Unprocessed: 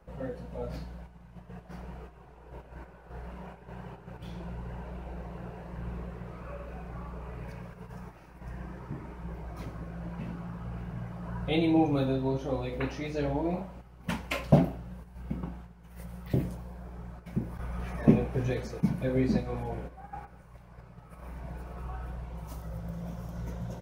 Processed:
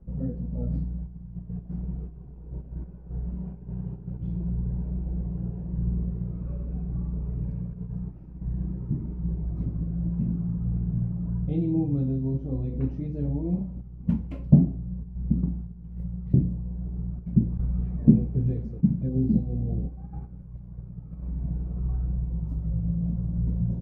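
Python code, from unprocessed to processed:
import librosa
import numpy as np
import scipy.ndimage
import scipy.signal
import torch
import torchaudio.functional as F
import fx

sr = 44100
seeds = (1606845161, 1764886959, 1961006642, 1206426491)

y = fx.rider(x, sr, range_db=3, speed_s=0.5)
y = fx.curve_eq(y, sr, hz=(220.0, 610.0, 1100.0, 1700.0), db=(0, -20, -26, -30))
y = fx.spec_repair(y, sr, seeds[0], start_s=19.12, length_s=0.8, low_hz=770.0, high_hz=2500.0, source='after')
y = fx.high_shelf(y, sr, hz=6200.0, db=-11.0)
y = y * librosa.db_to_amplitude(8.5)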